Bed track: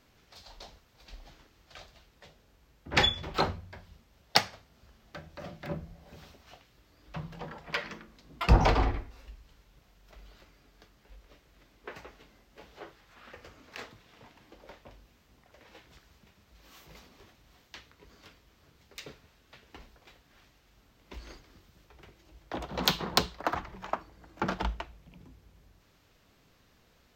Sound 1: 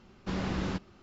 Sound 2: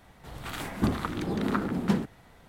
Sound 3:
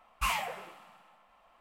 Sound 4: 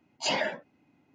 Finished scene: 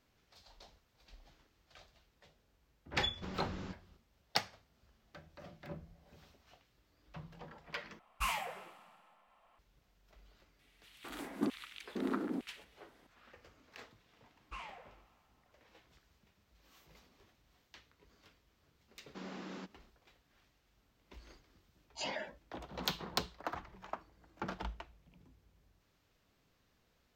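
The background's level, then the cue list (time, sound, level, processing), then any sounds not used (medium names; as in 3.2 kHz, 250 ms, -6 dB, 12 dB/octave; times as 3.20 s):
bed track -10 dB
2.95 s: add 1 -12 dB
7.99 s: replace with 3 -5 dB
10.59 s: add 2 -11 dB + LFO high-pass square 1.1 Hz 290–2600 Hz
14.30 s: add 3 -15.5 dB + distance through air 130 m
18.88 s: add 1 -11.5 dB + steep high-pass 190 Hz
21.75 s: add 4 -12 dB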